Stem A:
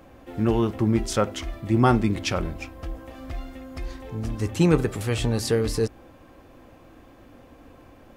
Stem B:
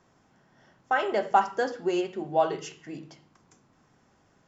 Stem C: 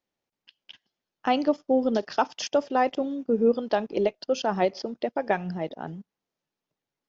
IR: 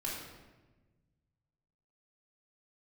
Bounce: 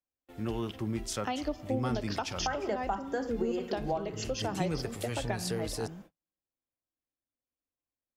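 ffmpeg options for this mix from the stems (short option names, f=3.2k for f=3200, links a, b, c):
-filter_complex "[0:a]acontrast=39,volume=-17.5dB[a];[1:a]equalizer=f=4.1k:w=0.56:g=-9.5,adelay=1550,volume=2.5dB[b];[2:a]volume=-7.5dB,asplit=3[c][d][e];[d]volume=-17dB[f];[e]apad=whole_len=265571[g];[b][g]sidechaincompress=threshold=-31dB:ratio=8:attack=16:release=139[h];[3:a]atrim=start_sample=2205[i];[f][i]afir=irnorm=-1:irlink=0[j];[a][h][c][j]amix=inputs=4:normalize=0,agate=range=-40dB:threshold=-51dB:ratio=16:detection=peak,highshelf=f=2.3k:g=8,acrossover=split=210[k][l];[l]acompressor=threshold=-30dB:ratio=8[m];[k][m]amix=inputs=2:normalize=0"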